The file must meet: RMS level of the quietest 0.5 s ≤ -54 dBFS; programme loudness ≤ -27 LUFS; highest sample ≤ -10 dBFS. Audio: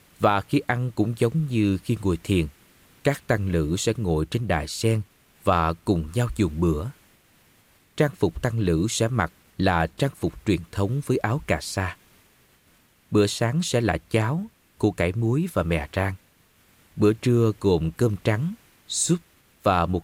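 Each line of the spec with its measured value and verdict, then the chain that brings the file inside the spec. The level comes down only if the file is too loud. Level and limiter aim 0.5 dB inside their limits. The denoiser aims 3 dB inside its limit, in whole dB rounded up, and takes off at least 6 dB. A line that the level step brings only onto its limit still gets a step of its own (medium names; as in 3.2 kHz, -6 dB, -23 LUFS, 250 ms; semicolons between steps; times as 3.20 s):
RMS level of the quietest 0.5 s -60 dBFS: pass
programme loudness -24.5 LUFS: fail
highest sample -6.5 dBFS: fail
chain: trim -3 dB; peak limiter -10.5 dBFS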